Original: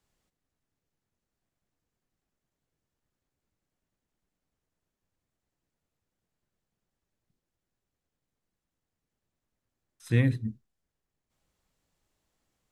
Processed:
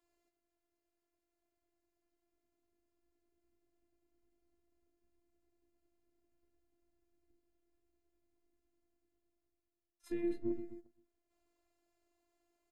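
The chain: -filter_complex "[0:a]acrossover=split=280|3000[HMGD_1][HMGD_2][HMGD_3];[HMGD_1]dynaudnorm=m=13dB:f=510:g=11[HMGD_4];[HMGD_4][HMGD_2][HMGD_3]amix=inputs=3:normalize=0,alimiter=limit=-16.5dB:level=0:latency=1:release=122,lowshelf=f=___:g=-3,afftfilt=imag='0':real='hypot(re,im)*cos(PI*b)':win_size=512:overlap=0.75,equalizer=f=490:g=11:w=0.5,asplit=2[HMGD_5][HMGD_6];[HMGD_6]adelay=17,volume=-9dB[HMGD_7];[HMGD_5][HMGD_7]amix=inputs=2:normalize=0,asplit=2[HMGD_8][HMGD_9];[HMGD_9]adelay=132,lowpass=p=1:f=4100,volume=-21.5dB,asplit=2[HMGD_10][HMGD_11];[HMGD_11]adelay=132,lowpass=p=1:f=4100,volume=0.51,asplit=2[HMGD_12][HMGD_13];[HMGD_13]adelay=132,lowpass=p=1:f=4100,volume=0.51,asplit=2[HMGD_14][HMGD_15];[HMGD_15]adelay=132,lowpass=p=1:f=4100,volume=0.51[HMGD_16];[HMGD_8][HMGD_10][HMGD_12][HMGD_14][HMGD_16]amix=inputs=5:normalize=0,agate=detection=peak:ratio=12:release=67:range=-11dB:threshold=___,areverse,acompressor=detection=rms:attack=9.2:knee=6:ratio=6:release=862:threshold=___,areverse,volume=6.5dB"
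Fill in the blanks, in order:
200, -59dB, -39dB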